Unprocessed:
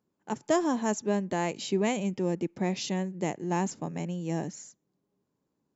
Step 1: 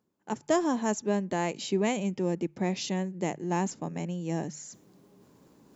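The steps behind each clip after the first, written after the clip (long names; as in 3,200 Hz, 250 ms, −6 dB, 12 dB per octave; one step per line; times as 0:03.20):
mains-hum notches 50/100/150 Hz
reversed playback
upward compression, threshold −40 dBFS
reversed playback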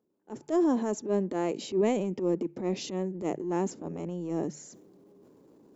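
parametric band 380 Hz +14.5 dB 1.8 octaves
transient designer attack −11 dB, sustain +5 dB
level −9 dB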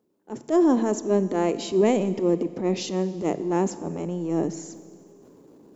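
four-comb reverb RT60 2 s, combs from 27 ms, DRR 14 dB
level +6 dB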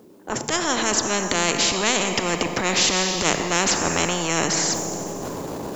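speech leveller 0.5 s
every bin compressed towards the loudest bin 4 to 1
level +6 dB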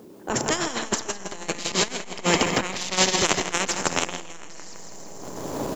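repeating echo 163 ms, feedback 52%, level −5 dB
saturating transformer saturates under 820 Hz
level +3 dB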